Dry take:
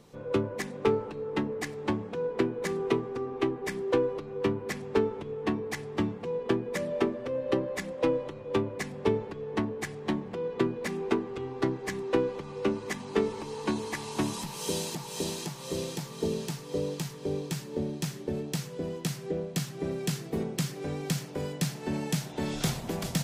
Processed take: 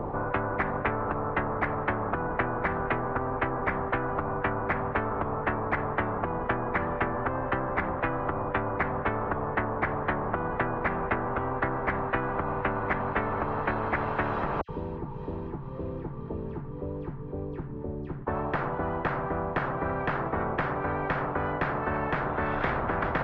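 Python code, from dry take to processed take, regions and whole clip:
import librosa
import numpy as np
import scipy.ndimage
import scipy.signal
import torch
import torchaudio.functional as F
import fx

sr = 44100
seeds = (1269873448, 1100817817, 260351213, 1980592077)

y = fx.chain(x, sr, fx.tone_stack(knobs='6-0-2'),
    fx.dispersion(late='lows', ms=80.0, hz=2300.0), at=(14.61, 18.27))
y = scipy.signal.sosfilt(scipy.signal.butter(4, 1100.0, 'lowpass', fs=sr, output='sos'), y)
y = fx.low_shelf_res(y, sr, hz=130.0, db=14.0, q=1.5)
y = fx.spectral_comp(y, sr, ratio=10.0)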